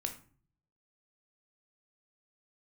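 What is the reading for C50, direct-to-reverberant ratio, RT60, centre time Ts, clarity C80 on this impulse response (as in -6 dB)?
11.0 dB, 4.5 dB, 0.45 s, 12 ms, 15.5 dB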